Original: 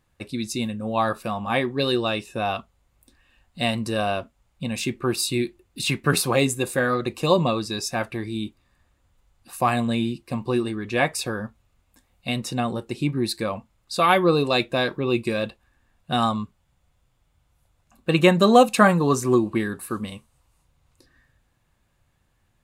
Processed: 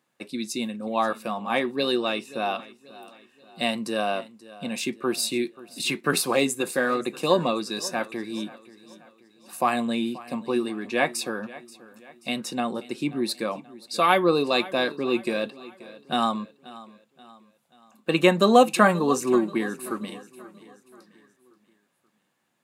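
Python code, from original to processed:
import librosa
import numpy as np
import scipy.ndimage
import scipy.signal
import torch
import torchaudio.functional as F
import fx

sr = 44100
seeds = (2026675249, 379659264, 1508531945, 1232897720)

p1 = scipy.signal.sosfilt(scipy.signal.butter(4, 190.0, 'highpass', fs=sr, output='sos'), x)
p2 = p1 + fx.echo_feedback(p1, sr, ms=532, feedback_pct=45, wet_db=-19, dry=0)
y = p2 * 10.0 ** (-1.5 / 20.0)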